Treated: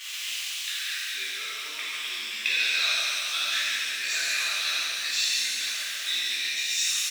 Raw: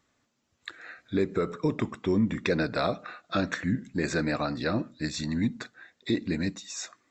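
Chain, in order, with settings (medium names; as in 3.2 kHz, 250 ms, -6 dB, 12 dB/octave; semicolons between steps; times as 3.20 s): jump at every zero crossing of -38 dBFS; echo from a far wall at 220 m, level -7 dB; reverse; upward compressor, threshold -37 dBFS; reverse; resonant high-pass 2.8 kHz, resonance Q 3.1; on a send: delay 137 ms -6.5 dB; on the sum: pitch-shifted reverb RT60 2.3 s, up +7 st, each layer -8 dB, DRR -9 dB; trim -3 dB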